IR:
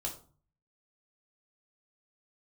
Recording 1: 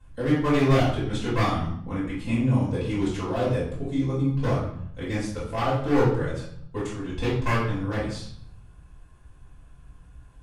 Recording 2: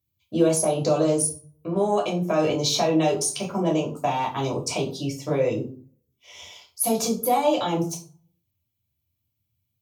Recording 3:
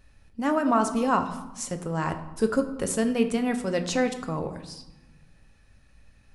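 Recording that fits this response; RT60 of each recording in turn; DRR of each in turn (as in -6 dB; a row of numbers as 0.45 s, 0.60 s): 2; 0.65 s, 0.40 s, 1.1 s; -11.5 dB, -1.5 dB, 6.5 dB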